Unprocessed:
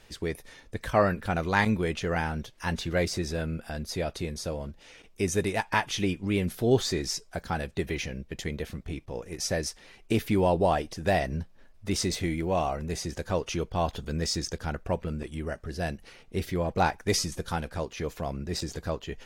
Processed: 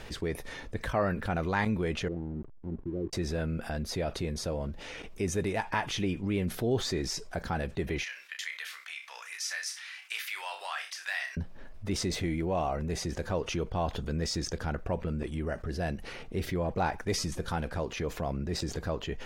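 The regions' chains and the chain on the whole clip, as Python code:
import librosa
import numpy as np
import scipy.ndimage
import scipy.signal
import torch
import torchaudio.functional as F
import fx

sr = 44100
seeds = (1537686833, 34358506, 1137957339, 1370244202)

y = fx.chain(x, sr, fx.ladder_lowpass(hz=390.0, resonance_pct=60),
    fx.backlash(play_db=-52.5), at=(2.08, 3.13))
y = fx.chain(y, sr, fx.highpass(hz=1400.0, slope=24),
    fx.room_flutter(wall_m=5.3, rt60_s=0.2), at=(8.03, 11.37))
y = fx.high_shelf(y, sr, hz=3500.0, db=-8.5)
y = fx.env_flatten(y, sr, amount_pct=50)
y = F.gain(torch.from_numpy(y), -7.0).numpy()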